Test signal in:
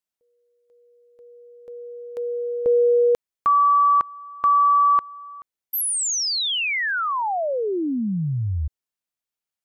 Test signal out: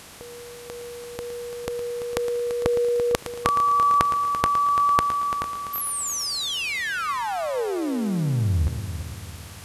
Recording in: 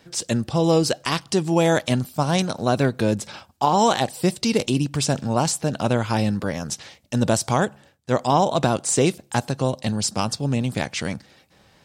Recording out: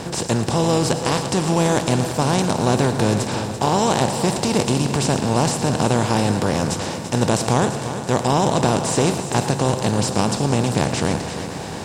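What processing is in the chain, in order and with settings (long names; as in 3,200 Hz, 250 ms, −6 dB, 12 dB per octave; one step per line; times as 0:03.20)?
compressor on every frequency bin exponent 0.4
low-shelf EQ 140 Hz +10 dB
on a send: echo machine with several playback heads 113 ms, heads first and third, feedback 61%, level −12 dB
on the sum: level −6 dB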